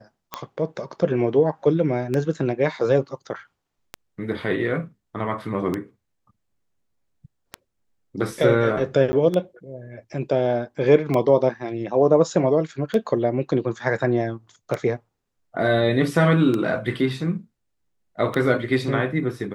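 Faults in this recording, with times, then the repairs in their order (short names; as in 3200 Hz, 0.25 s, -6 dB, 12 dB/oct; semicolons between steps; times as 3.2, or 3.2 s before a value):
tick 33 1/3 rpm -12 dBFS
9.12–9.13 gap 10 ms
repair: de-click; interpolate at 9.12, 10 ms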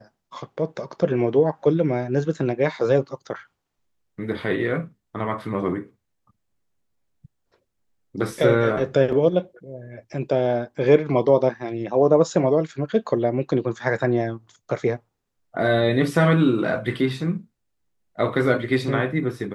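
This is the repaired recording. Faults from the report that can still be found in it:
none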